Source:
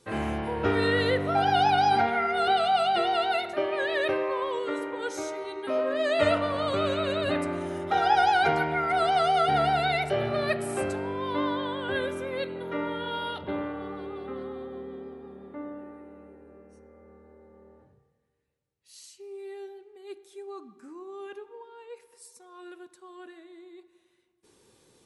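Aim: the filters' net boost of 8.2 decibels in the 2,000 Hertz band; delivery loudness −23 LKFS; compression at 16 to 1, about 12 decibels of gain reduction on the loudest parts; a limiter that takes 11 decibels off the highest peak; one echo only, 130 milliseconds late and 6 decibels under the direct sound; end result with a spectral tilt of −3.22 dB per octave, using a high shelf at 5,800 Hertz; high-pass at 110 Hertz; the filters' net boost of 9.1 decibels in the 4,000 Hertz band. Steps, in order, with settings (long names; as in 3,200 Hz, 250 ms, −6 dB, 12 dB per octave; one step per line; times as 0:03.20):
high-pass filter 110 Hz
parametric band 2,000 Hz +8.5 dB
parametric band 4,000 Hz +6 dB
high-shelf EQ 5,800 Hz +7 dB
downward compressor 16 to 1, threshold −27 dBFS
brickwall limiter −28.5 dBFS
single-tap delay 130 ms −6 dB
level +13 dB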